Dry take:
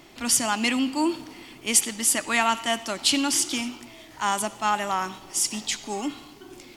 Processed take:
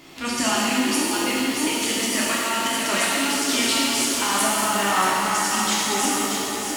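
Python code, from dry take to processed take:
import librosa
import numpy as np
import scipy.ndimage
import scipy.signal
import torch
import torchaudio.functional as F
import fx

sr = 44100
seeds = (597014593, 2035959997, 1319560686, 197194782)

y = fx.peak_eq(x, sr, hz=620.0, db=-3.5, octaves=1.7)
y = fx.echo_feedback(y, sr, ms=624, feedback_pct=47, wet_db=-9.0)
y = fx.over_compress(y, sr, threshold_db=-27.0, ratio=-0.5)
y = fx.low_shelf(y, sr, hz=99.0, db=-7.0)
y = fx.rev_shimmer(y, sr, seeds[0], rt60_s=2.4, semitones=7, shimmer_db=-8, drr_db=-6.0)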